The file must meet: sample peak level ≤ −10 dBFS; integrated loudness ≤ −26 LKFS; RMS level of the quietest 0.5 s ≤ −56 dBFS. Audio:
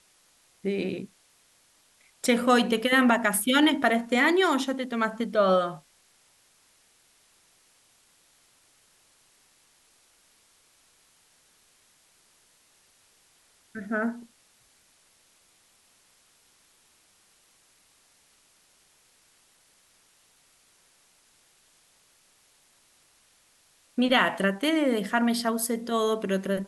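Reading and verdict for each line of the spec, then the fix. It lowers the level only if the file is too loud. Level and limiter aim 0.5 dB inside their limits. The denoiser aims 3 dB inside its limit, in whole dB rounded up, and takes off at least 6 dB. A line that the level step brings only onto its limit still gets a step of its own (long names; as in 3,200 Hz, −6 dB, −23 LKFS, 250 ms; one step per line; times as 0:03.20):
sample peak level −7.5 dBFS: out of spec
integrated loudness −24.5 LKFS: out of spec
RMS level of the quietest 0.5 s −63 dBFS: in spec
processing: level −2 dB
brickwall limiter −10.5 dBFS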